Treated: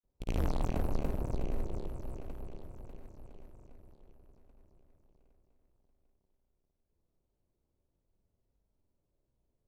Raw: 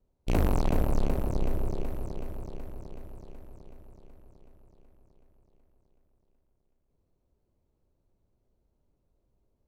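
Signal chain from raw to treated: granulator, pitch spread up and down by 0 st; trim -5 dB

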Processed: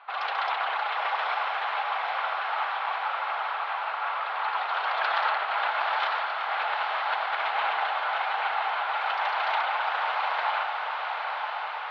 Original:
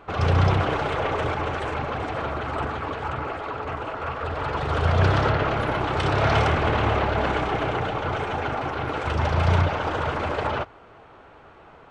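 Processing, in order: elliptic band-pass 780–4200 Hz, stop band 60 dB; 5.36–7.87 s: compressor with a negative ratio -30 dBFS, ratio -0.5; echo that smears into a reverb 907 ms, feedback 69%, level -4 dB

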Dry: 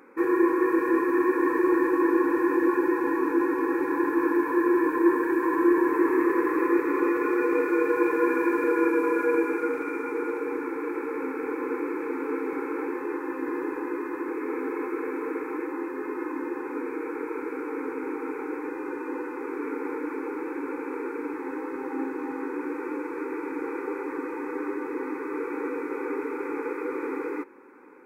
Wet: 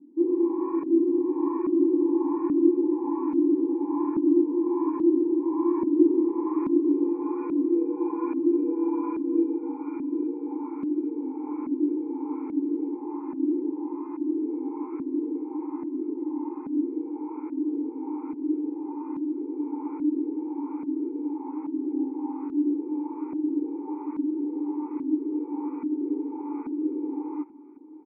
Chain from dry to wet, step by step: vowel filter u; peaking EQ 170 Hz +11.5 dB 0.81 oct; LFO low-pass saw up 1.2 Hz 240–1500 Hz; on a send: feedback delay 1102 ms, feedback 39%, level -21.5 dB; on the sum: trim +2 dB

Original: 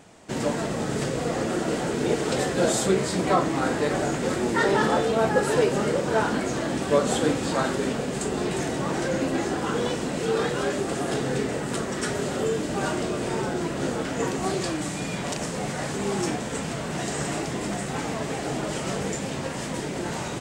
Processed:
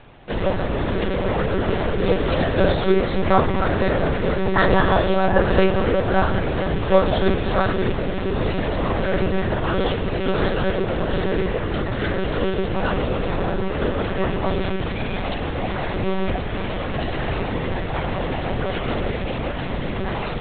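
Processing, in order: de-hum 74.6 Hz, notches 29; monotone LPC vocoder at 8 kHz 190 Hz; trim +6 dB

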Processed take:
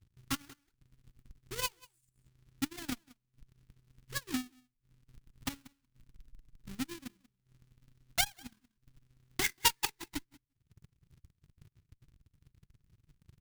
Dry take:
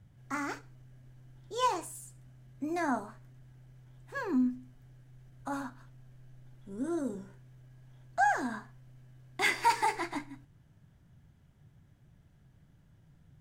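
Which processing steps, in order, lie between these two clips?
square wave that keeps the level; transient shaper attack +11 dB, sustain -11 dB; delay 185 ms -15 dB; transient shaper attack +10 dB, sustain -11 dB; amplifier tone stack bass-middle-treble 6-0-2

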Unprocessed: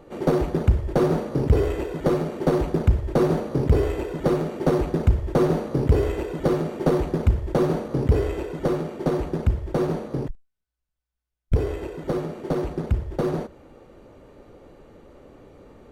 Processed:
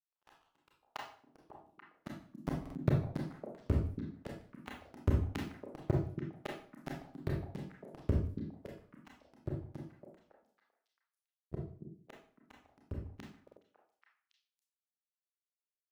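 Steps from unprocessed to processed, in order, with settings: pitch shift switched off and on +7.5 st, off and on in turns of 304 ms; high-order bell 520 Hz -14 dB 1 oct; compression 2:1, threshold -34 dBFS, peak gain reduction 12 dB; power-law waveshaper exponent 2; high-pass sweep 930 Hz -> 76 Hz, 0.54–3.20 s; power-law waveshaper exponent 3; repeats whose band climbs or falls 278 ms, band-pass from 230 Hz, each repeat 1.4 oct, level -3 dB; reverberation RT60 0.45 s, pre-delay 27 ms, DRR -2 dB; buffer glitch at 2.61/13.43 s, samples 2048, times 2; trim +3 dB

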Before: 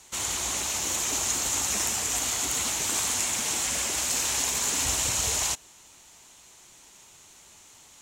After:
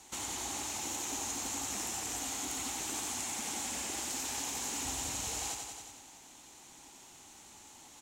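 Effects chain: on a send: feedback delay 91 ms, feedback 55%, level -6 dB; on the sum: compression 2:1, threshold -38 dBFS, peak gain reduction 9 dB; small resonant body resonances 280/800 Hz, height 9 dB, ringing for 25 ms; trim -4 dB

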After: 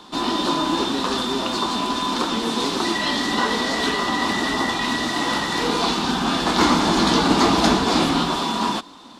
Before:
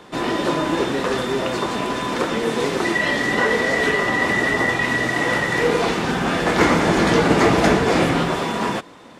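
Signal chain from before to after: graphic EQ 125/250/500/1000/2000/4000 Hz -11/+6/-10/+6/-10/+10 dB

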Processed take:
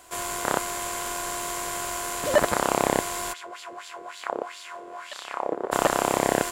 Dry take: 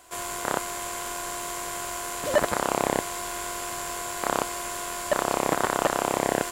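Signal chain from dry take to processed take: 3.32–5.71 s: LFO band-pass sine 5.1 Hz -> 0.97 Hz 400–4100 Hz; trim +2 dB

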